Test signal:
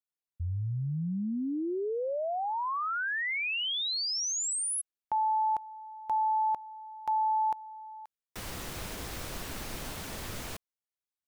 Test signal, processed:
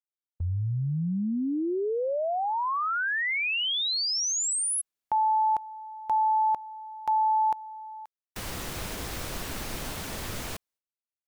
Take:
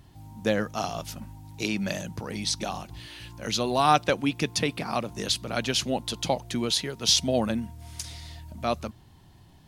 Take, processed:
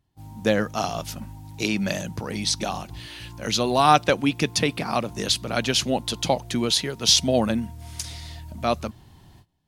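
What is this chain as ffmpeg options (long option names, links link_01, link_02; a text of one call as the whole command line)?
ffmpeg -i in.wav -af "agate=range=-23dB:threshold=-43dB:ratio=16:release=483:detection=rms,volume=4dB" out.wav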